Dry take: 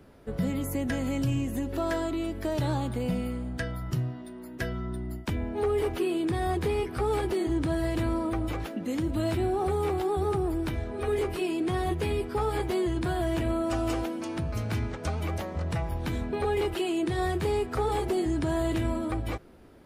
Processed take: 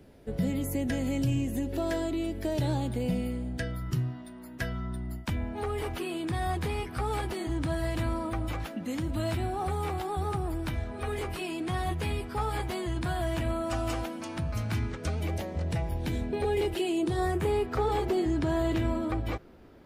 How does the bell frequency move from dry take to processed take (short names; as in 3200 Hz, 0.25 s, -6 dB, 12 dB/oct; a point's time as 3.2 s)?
bell -9 dB 0.71 oct
3.57 s 1200 Hz
4.23 s 390 Hz
14.61 s 390 Hz
15.25 s 1200 Hz
16.88 s 1200 Hz
17.74 s 9800 Hz